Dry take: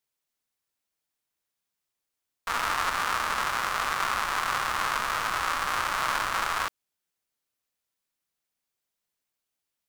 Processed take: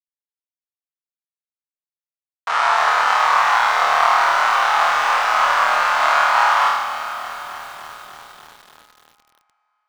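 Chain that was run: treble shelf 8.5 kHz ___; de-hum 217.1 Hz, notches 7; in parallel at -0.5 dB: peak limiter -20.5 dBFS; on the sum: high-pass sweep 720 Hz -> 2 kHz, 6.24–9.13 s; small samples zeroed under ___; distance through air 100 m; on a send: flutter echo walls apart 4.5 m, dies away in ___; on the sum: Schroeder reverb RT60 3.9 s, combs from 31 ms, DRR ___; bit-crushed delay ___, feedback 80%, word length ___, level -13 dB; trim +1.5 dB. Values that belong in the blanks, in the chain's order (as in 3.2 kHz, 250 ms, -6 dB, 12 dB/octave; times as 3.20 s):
+3.5 dB, -36 dBFS, 0.91 s, 10.5 dB, 297 ms, 6-bit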